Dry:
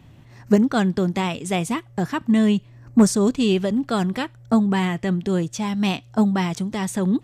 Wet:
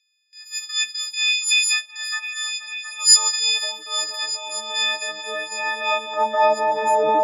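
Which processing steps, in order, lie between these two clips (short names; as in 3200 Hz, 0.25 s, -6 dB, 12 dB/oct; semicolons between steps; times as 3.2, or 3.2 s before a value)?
frequency quantiser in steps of 6 st; gate with hold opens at -34 dBFS; band-pass sweep 5200 Hz -> 480 Hz, 4.5–6.96; transient shaper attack -9 dB, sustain +6 dB; high-pass sweep 2300 Hz -> 580 Hz, 1.53–4.21; repeats that get brighter 0.24 s, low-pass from 400 Hz, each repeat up 1 oct, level 0 dB; gain +9 dB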